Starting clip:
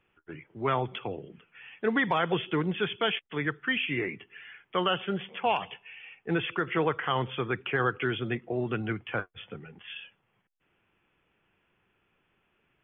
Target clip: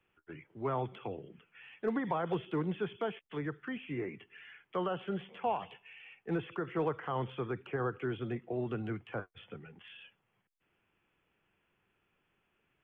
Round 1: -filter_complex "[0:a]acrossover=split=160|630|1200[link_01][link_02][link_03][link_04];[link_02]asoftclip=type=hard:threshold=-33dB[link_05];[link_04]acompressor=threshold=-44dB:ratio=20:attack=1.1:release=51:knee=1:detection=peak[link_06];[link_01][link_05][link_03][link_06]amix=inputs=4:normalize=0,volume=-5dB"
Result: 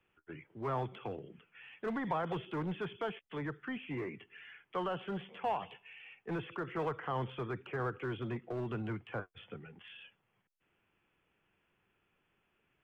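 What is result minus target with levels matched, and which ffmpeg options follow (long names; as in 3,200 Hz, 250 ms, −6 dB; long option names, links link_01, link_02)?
hard clipping: distortion +19 dB
-filter_complex "[0:a]acrossover=split=160|630|1200[link_01][link_02][link_03][link_04];[link_02]asoftclip=type=hard:threshold=-22.5dB[link_05];[link_04]acompressor=threshold=-44dB:ratio=20:attack=1.1:release=51:knee=1:detection=peak[link_06];[link_01][link_05][link_03][link_06]amix=inputs=4:normalize=0,volume=-5dB"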